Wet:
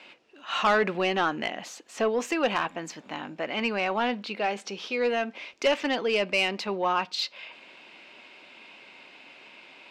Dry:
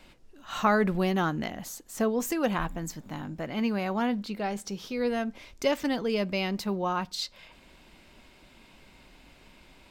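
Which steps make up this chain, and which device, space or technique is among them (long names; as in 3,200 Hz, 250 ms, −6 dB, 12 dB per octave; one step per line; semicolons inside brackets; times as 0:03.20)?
intercom (band-pass filter 380–4,600 Hz; parametric band 2,600 Hz +7.5 dB 0.5 octaves; soft clipping −20.5 dBFS, distortion −14 dB)
level +5.5 dB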